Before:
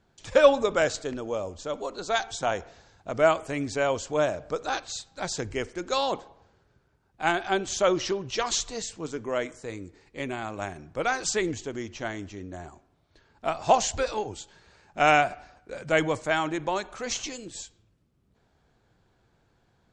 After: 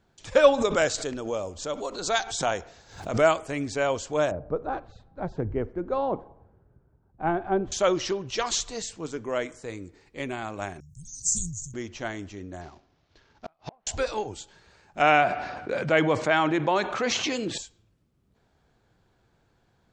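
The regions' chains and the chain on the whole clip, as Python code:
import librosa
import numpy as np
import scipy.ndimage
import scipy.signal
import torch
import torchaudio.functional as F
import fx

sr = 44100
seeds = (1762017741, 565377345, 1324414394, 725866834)

y = fx.chain(x, sr, fx.high_shelf(hz=4300.0, db=5.5),
    fx.pre_swell(db_per_s=110.0), at=(0.58, 3.39))
y = fx.chain(y, sr, fx.lowpass(hz=1000.0, slope=12),
    fx.low_shelf(hz=290.0, db=7.5), at=(4.31, 7.72))
y = fx.chain(y, sr, fx.cheby1_bandstop(low_hz=150.0, high_hz=6400.0, order=4),
    fx.high_shelf(hz=2800.0, db=7.0),
    fx.sustainer(db_per_s=56.0), at=(10.8, 11.74))
y = fx.chain(y, sr, fx.cvsd(bps=32000),
    fx.env_lowpass_down(base_hz=1400.0, full_db=-21.5),
    fx.gate_flip(shuts_db=-24.0, range_db=-38), at=(12.61, 13.87))
y = fx.chain(y, sr, fx.bandpass_edges(low_hz=120.0, high_hz=3900.0),
    fx.env_flatten(amount_pct=50), at=(15.02, 17.58))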